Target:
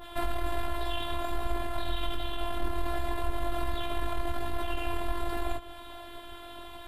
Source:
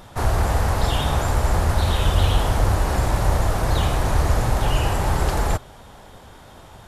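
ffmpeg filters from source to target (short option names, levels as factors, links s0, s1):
-af "aeval=exprs='(tanh(6.31*val(0)+0.5)-tanh(0.5))/6.31':c=same,highshelf=f=4800:t=q:w=3:g=-11,acompressor=threshold=0.0794:ratio=6,alimiter=limit=0.0708:level=0:latency=1:release=89,flanger=delay=15.5:depth=7.5:speed=1.3,bandreject=f=219.4:t=h:w=4,bandreject=f=438.8:t=h:w=4,bandreject=f=658.2:t=h:w=4,bandreject=f=877.6:t=h:w=4,bandreject=f=1097:t=h:w=4,bandreject=f=1316.4:t=h:w=4,bandreject=f=1535.8:t=h:w=4,bandreject=f=1755.2:t=h:w=4,bandreject=f=1974.6:t=h:w=4,bandreject=f=2194:t=h:w=4,bandreject=f=2413.4:t=h:w=4,bandreject=f=2632.8:t=h:w=4,bandreject=f=2852.2:t=h:w=4,bandreject=f=3071.6:t=h:w=4,bandreject=f=3291:t=h:w=4,bandreject=f=3510.4:t=h:w=4,bandreject=f=3729.8:t=h:w=4,bandreject=f=3949.2:t=h:w=4,bandreject=f=4168.6:t=h:w=4,bandreject=f=4388:t=h:w=4,bandreject=f=4607.4:t=h:w=4,bandreject=f=4826.8:t=h:w=4,bandreject=f=5046.2:t=h:w=4,bandreject=f=5265.6:t=h:w=4,bandreject=f=5485:t=h:w=4,bandreject=f=5704.4:t=h:w=4,bandreject=f=5923.8:t=h:w=4,bandreject=f=6143.2:t=h:w=4,bandreject=f=6362.6:t=h:w=4,bandreject=f=6582:t=h:w=4,bandreject=f=6801.4:t=h:w=4,bandreject=f=7020.8:t=h:w=4,bandreject=f=7240.2:t=h:w=4,bandreject=f=7459.6:t=h:w=4,afftfilt=real='hypot(re,im)*cos(PI*b)':imag='0':win_size=512:overlap=0.75,aexciter=amount=5.3:drive=1.8:freq=6800,adynamicequalizer=threshold=0.002:dfrequency=1600:dqfactor=0.7:tfrequency=1600:tqfactor=0.7:attack=5:release=100:ratio=0.375:range=2:mode=cutabove:tftype=highshelf,volume=2.66"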